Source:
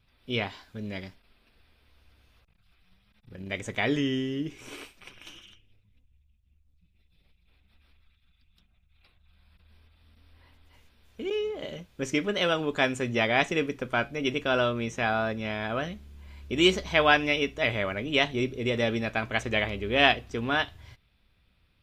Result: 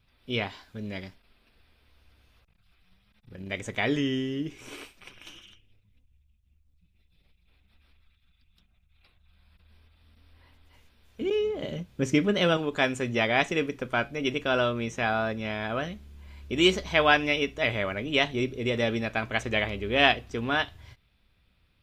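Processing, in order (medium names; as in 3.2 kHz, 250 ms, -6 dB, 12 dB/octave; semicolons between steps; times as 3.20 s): 11.21–12.57 s: peaking EQ 140 Hz +8.5 dB 2.6 oct; endings held to a fixed fall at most 470 dB/s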